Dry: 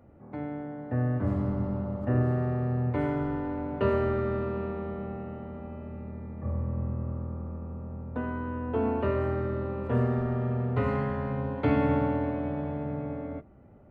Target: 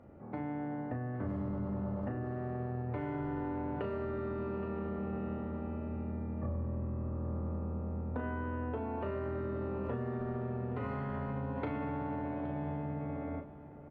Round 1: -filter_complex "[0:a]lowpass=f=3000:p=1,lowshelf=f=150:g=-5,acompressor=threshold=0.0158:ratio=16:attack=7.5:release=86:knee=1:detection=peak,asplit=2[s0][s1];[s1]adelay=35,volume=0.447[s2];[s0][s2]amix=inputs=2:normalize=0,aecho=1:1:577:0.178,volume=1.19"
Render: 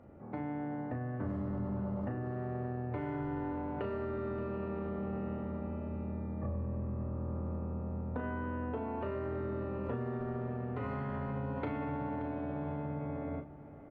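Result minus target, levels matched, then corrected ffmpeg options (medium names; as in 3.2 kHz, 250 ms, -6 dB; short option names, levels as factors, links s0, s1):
echo 242 ms early
-filter_complex "[0:a]lowpass=f=3000:p=1,lowshelf=f=150:g=-5,acompressor=threshold=0.0158:ratio=16:attack=7.5:release=86:knee=1:detection=peak,asplit=2[s0][s1];[s1]adelay=35,volume=0.447[s2];[s0][s2]amix=inputs=2:normalize=0,aecho=1:1:819:0.178,volume=1.19"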